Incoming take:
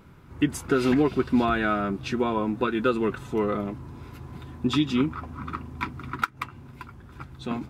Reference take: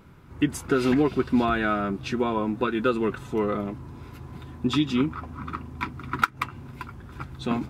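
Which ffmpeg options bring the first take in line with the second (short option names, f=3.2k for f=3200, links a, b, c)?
-af "asetnsamples=n=441:p=0,asendcmd='6.12 volume volume 4dB',volume=0dB"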